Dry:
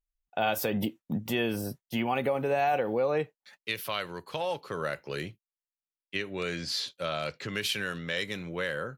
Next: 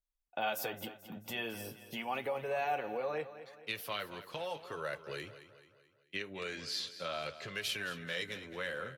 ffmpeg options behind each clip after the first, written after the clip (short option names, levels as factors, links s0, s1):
-filter_complex "[0:a]acrossover=split=500|1300[s0][s1][s2];[s0]acompressor=threshold=0.01:ratio=6[s3];[s3][s1][s2]amix=inputs=3:normalize=0,flanger=delay=1.8:depth=8:regen=-44:speed=0.4:shape=sinusoidal,aecho=1:1:218|436|654|872|1090:0.211|0.101|0.0487|0.0234|0.0112,volume=0.794"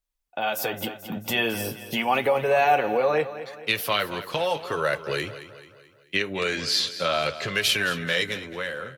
-af "dynaudnorm=f=110:g=13:m=2.66,volume=2"